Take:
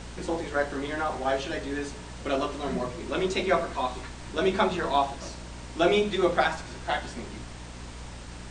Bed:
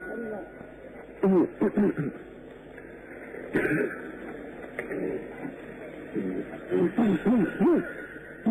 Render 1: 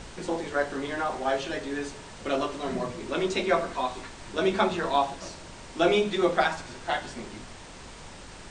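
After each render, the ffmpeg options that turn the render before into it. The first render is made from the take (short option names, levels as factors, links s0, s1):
-af "bandreject=f=60:t=h:w=4,bandreject=f=120:t=h:w=4,bandreject=f=180:t=h:w=4,bandreject=f=240:t=h:w=4,bandreject=f=300:t=h:w=4"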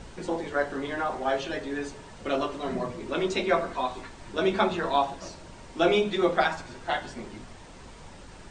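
-af "afftdn=nr=6:nf=-45"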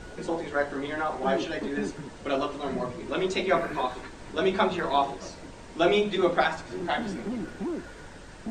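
-filter_complex "[1:a]volume=0.299[s0];[0:a][s0]amix=inputs=2:normalize=0"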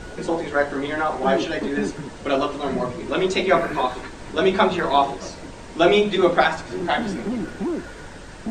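-af "volume=2.11"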